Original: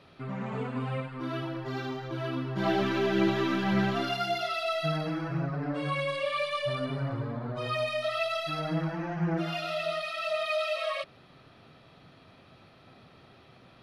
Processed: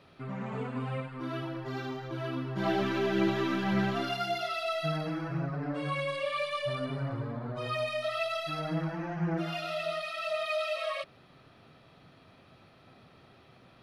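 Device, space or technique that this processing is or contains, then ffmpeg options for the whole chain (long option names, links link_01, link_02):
exciter from parts: -filter_complex "[0:a]asplit=2[link_01][link_02];[link_02]highpass=2900,asoftclip=type=tanh:threshold=-39dB,highpass=3700,volume=-13dB[link_03];[link_01][link_03]amix=inputs=2:normalize=0,volume=-2dB"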